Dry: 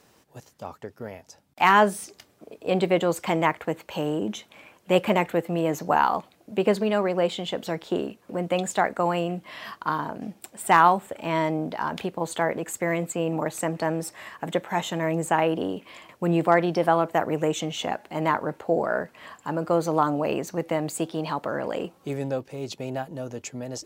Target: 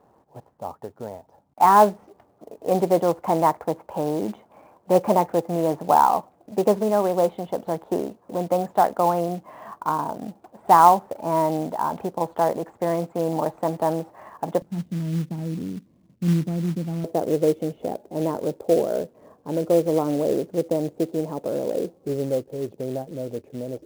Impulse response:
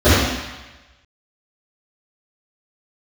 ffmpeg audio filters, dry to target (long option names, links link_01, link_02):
-af "asetnsamples=nb_out_samples=441:pad=0,asendcmd='14.62 lowpass f 190;17.04 lowpass f 490',lowpass=frequency=870:width_type=q:width=2,acrusher=bits=5:mode=log:mix=0:aa=0.000001"